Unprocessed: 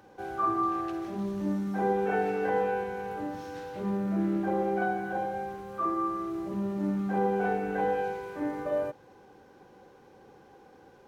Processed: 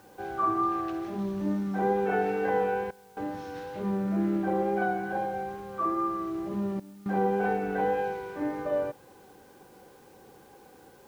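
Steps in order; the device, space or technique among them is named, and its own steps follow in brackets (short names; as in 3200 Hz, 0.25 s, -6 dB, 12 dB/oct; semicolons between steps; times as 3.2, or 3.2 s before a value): worn cassette (LPF 6200 Hz; wow and flutter 21 cents; level dips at 2.91/6.8, 0.256 s -20 dB; white noise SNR 34 dB); gain +1 dB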